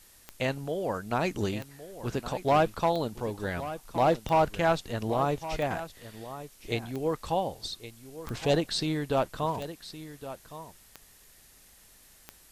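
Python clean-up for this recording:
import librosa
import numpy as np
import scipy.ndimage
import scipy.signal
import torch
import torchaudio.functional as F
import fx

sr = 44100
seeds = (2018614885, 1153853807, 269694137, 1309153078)

y = fx.fix_declick_ar(x, sr, threshold=10.0)
y = fx.noise_reduce(y, sr, print_start_s=11.4, print_end_s=11.9, reduce_db=17.0)
y = fx.fix_echo_inverse(y, sr, delay_ms=1115, level_db=-13.5)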